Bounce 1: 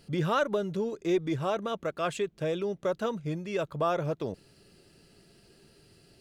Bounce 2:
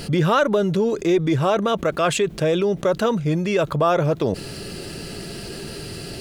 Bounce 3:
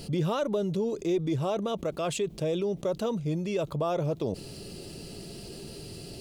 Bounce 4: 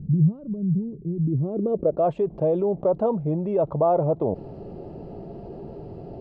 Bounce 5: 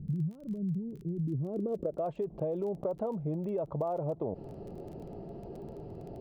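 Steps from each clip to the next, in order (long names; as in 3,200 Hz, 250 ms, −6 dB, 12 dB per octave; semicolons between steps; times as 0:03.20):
envelope flattener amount 50%; level +7.5 dB
parametric band 1,600 Hz −11.5 dB 1 octave; level −8.5 dB
low-pass filter sweep 160 Hz → 800 Hz, 0:01.14–0:02.11; level +4 dB
downward compressor 6 to 1, threshold −24 dBFS, peak gain reduction 9.5 dB; surface crackle 19 per second −38 dBFS; level −6 dB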